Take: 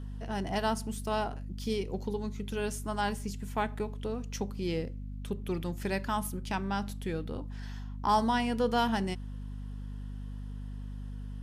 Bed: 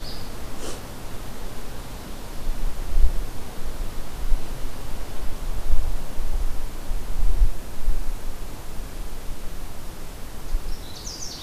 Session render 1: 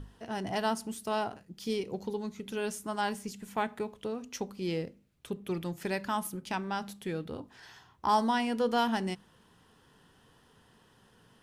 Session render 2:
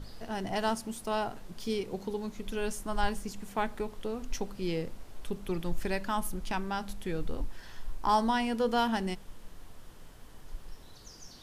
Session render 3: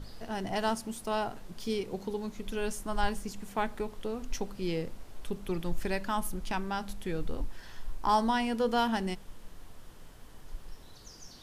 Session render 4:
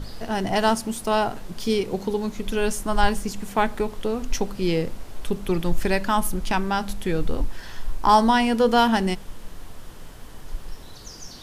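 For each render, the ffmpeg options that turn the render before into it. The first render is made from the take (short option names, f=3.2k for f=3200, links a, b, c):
-af "bandreject=f=50:t=h:w=6,bandreject=f=100:t=h:w=6,bandreject=f=150:t=h:w=6,bandreject=f=200:t=h:w=6,bandreject=f=250:t=h:w=6"
-filter_complex "[1:a]volume=-17dB[a];[0:a][a]amix=inputs=2:normalize=0"
-af anull
-af "volume=10dB"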